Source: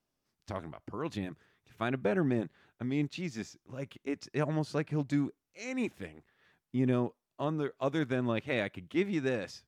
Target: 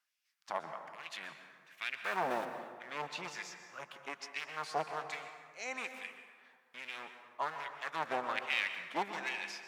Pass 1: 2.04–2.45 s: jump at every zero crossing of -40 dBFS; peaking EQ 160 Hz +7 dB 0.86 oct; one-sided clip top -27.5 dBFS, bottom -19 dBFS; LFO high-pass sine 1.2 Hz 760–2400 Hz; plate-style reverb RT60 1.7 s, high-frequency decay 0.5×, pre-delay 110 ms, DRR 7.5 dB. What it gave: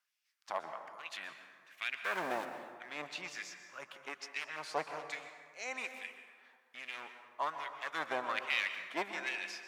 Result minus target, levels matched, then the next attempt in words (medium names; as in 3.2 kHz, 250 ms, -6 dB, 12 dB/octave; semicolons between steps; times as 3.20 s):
125 Hz band -4.5 dB
2.04–2.45 s: jump at every zero crossing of -40 dBFS; peaking EQ 160 Hz +16 dB 0.86 oct; one-sided clip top -27.5 dBFS, bottom -19 dBFS; LFO high-pass sine 1.2 Hz 760–2400 Hz; plate-style reverb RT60 1.7 s, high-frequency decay 0.5×, pre-delay 110 ms, DRR 7.5 dB